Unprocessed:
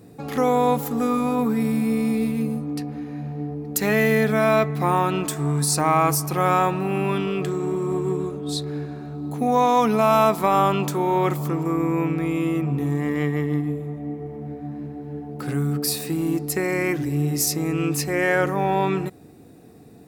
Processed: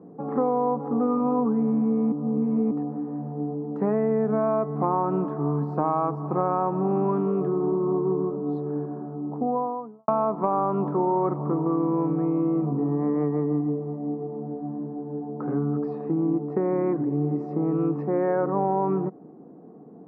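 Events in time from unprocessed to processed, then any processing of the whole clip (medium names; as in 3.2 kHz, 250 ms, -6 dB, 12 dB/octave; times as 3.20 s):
2.12–2.71 s: reverse
8.94–10.08 s: studio fade out
whole clip: Chebyshev band-pass 170–1100 Hz, order 3; compression, threshold -22 dBFS; trim +2.5 dB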